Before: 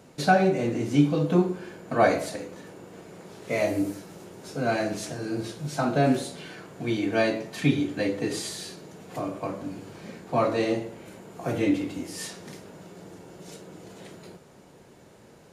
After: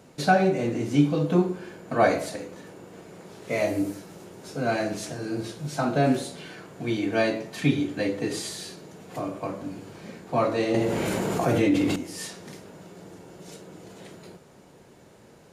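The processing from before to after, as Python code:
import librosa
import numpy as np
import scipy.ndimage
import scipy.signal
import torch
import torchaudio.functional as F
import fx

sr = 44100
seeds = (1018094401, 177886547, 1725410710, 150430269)

y = fx.env_flatten(x, sr, amount_pct=70, at=(10.74, 11.96))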